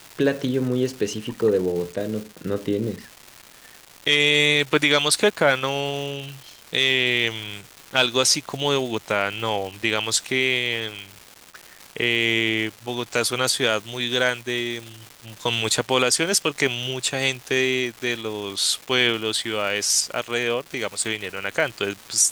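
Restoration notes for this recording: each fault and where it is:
crackle 520 per s -31 dBFS

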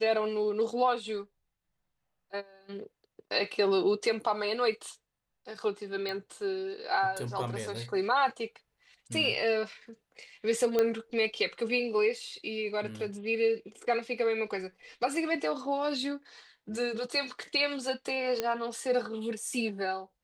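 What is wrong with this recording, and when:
6.09 s: pop -23 dBFS
10.79 s: pop -14 dBFS
18.40 s: pop -15 dBFS

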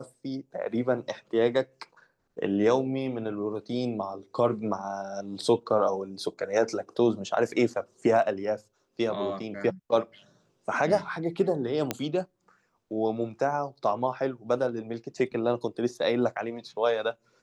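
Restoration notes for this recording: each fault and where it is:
11.91 s: pop -11 dBFS

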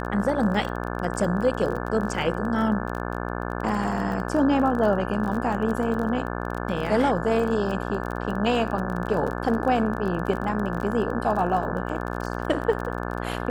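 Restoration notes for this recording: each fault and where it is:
buzz 60 Hz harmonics 29 -30 dBFS
crackle 27 per s -30 dBFS
10.77 s: dropout 3.3 ms

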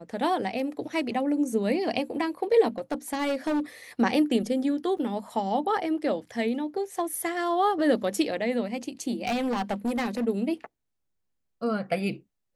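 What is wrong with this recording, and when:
2.78–3.60 s: clipped -23 dBFS
4.98–4.99 s: dropout 5.2 ms
9.25–10.25 s: clipped -23.5 dBFS

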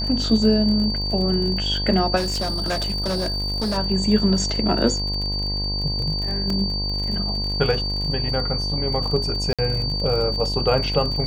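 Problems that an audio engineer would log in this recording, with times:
buzz 50 Hz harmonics 21 -27 dBFS
crackle 42 per s -28 dBFS
whine 4.6 kHz -25 dBFS
2.16–3.78 s: clipped -20 dBFS
6.50 s: dropout 3.1 ms
9.53–9.59 s: dropout 56 ms

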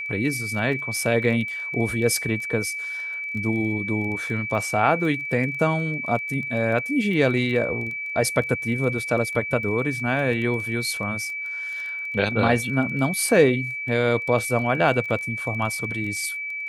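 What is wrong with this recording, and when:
crackle 17 per s -31 dBFS
whine 2.3 kHz -28 dBFS

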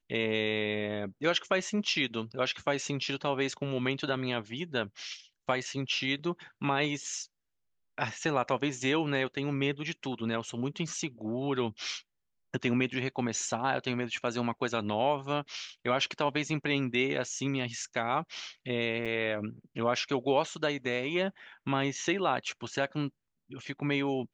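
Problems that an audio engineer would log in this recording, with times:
19.05–19.06 s: dropout 6.9 ms

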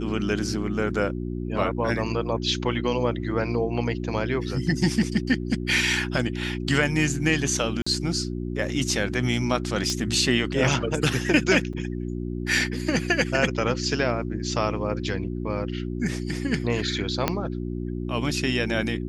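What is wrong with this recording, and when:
hum 60 Hz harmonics 6 -30 dBFS
7.82–7.87 s: dropout 45 ms
9.90 s: pop -13 dBFS
11.73–11.74 s: dropout 5.6 ms
17.28 s: pop -6 dBFS

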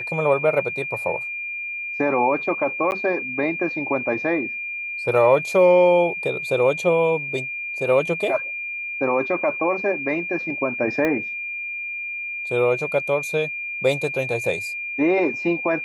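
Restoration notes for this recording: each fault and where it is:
whine 2.4 kHz -27 dBFS
2.91–2.92 s: dropout 9.7 ms
11.05 s: pop -11 dBFS

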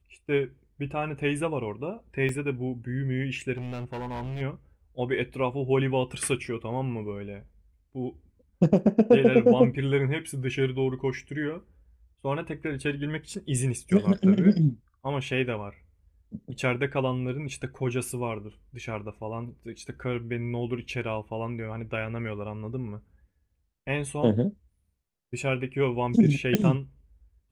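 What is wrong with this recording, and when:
2.29 s: dropout 2.2 ms
3.56–4.42 s: clipped -31 dBFS
26.55 s: pop -9 dBFS

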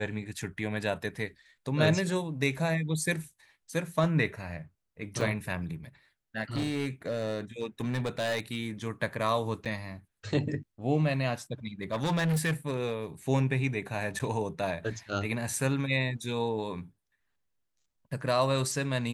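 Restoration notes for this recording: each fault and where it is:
5.21 s: dropout 2 ms
6.55–8.69 s: clipped -26 dBFS
9.65–9.66 s: dropout 6.9 ms
11.83–12.93 s: clipped -24.5 dBFS
14.19–14.20 s: dropout 8.4 ms

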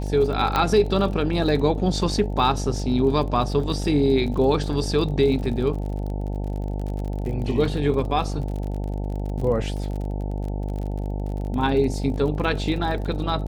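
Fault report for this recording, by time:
buzz 50 Hz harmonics 18 -27 dBFS
crackle 41 per s -31 dBFS
0.56 s: pop -8 dBFS

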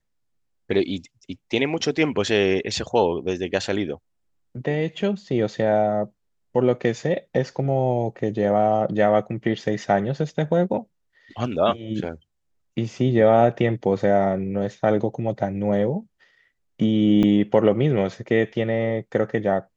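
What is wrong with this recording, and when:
17.23 s: dropout 3.7 ms

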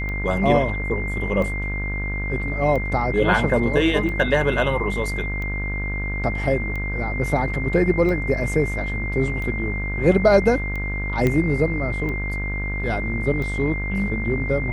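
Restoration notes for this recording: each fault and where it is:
buzz 50 Hz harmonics 35 -27 dBFS
tick 45 rpm -19 dBFS
whine 2.1 kHz -28 dBFS
11.27 s: pop -9 dBFS

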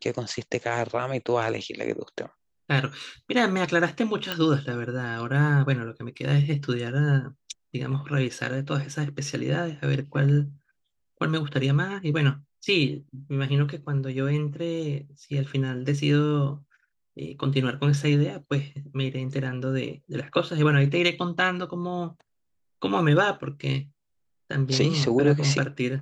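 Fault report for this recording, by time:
4.32 s: pop -13 dBFS

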